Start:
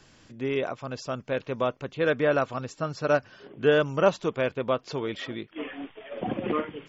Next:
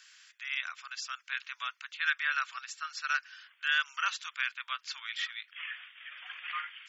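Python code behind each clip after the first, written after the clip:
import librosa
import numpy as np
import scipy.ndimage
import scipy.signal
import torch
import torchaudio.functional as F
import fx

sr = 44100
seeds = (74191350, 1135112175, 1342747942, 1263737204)

y = scipy.signal.sosfilt(scipy.signal.butter(6, 1400.0, 'highpass', fs=sr, output='sos'), x)
y = y * 10.0 ** (3.0 / 20.0)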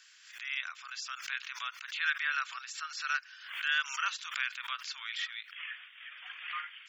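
y = fx.low_shelf(x, sr, hz=500.0, db=-5.5)
y = fx.pre_swell(y, sr, db_per_s=78.0)
y = y * 10.0 ** (-1.5 / 20.0)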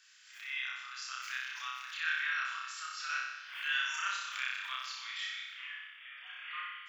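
y = fx.room_flutter(x, sr, wall_m=5.3, rt60_s=1.0)
y = y * 10.0 ** (-6.0 / 20.0)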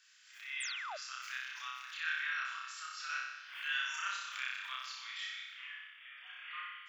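y = fx.spec_paint(x, sr, seeds[0], shape='fall', start_s=0.6, length_s=0.37, low_hz=550.0, high_hz=9600.0, level_db=-40.0)
y = y * 10.0 ** (-3.0 / 20.0)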